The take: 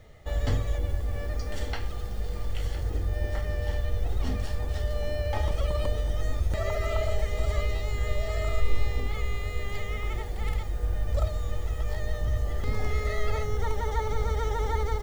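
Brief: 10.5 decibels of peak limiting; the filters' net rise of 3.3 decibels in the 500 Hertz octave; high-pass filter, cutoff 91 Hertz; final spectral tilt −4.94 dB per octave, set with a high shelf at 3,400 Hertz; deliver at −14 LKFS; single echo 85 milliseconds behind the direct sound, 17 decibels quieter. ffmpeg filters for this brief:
ffmpeg -i in.wav -af "highpass=91,equalizer=frequency=500:width_type=o:gain=4,highshelf=frequency=3400:gain=4,alimiter=level_in=3dB:limit=-24dB:level=0:latency=1,volume=-3dB,aecho=1:1:85:0.141,volume=22.5dB" out.wav

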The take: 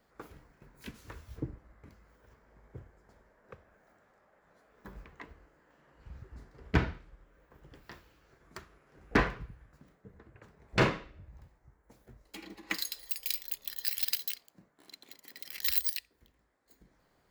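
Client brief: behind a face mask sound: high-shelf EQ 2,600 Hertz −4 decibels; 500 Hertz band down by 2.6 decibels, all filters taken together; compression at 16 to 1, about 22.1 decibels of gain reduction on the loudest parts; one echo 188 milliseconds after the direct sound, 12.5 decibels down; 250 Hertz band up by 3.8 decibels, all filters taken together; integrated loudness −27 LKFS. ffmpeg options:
ffmpeg -i in.wav -af "equalizer=frequency=250:width_type=o:gain=7,equalizer=frequency=500:width_type=o:gain=-6,acompressor=threshold=-42dB:ratio=16,highshelf=frequency=2600:gain=-4,aecho=1:1:188:0.237,volume=25.5dB" out.wav

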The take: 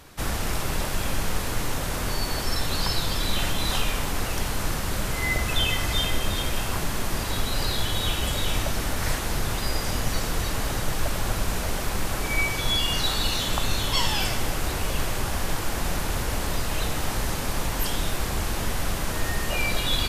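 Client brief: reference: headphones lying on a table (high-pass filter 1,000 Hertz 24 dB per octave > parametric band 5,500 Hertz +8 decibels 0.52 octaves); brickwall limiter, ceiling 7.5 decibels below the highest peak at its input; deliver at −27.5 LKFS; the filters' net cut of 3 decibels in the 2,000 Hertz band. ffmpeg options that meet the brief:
ffmpeg -i in.wav -af "equalizer=frequency=2000:width_type=o:gain=-4,alimiter=limit=-18dB:level=0:latency=1,highpass=frequency=1000:width=0.5412,highpass=frequency=1000:width=1.3066,equalizer=frequency=5500:width_type=o:width=0.52:gain=8,volume=2dB" out.wav

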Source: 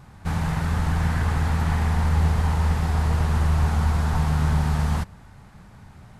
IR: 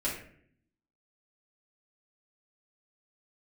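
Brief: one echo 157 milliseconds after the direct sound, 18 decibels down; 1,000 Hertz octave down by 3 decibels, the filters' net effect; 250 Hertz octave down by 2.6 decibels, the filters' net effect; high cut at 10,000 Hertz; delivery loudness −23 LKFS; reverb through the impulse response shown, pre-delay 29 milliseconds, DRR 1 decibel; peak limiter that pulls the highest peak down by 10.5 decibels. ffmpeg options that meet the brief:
-filter_complex "[0:a]lowpass=10000,equalizer=frequency=250:width_type=o:gain=-5,equalizer=frequency=1000:width_type=o:gain=-3.5,alimiter=limit=-22dB:level=0:latency=1,aecho=1:1:157:0.126,asplit=2[link_01][link_02];[1:a]atrim=start_sample=2205,adelay=29[link_03];[link_02][link_03]afir=irnorm=-1:irlink=0,volume=-7dB[link_04];[link_01][link_04]amix=inputs=2:normalize=0,volume=4.5dB"

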